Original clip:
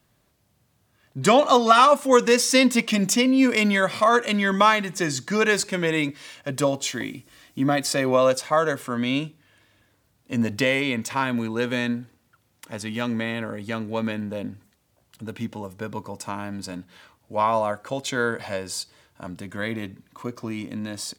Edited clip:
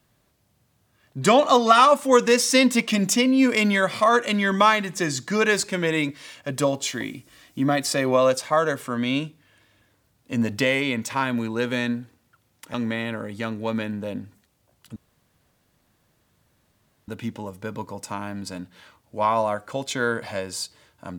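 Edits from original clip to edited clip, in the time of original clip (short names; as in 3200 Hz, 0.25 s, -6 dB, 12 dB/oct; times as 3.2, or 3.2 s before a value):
12.74–13.03 cut
15.25 insert room tone 2.12 s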